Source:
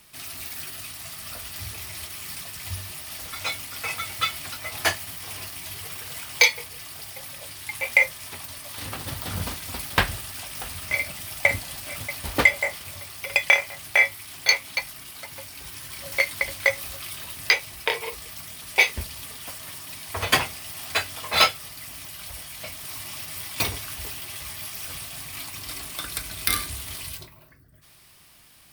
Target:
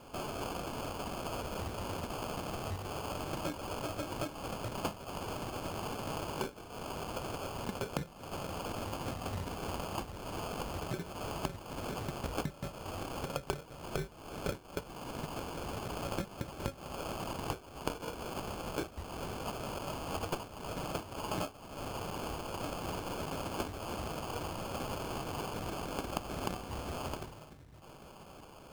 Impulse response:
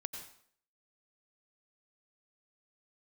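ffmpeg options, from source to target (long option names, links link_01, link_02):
-af "acompressor=threshold=-36dB:ratio=8,acrusher=samples=23:mix=1:aa=0.000001,volume=1dB"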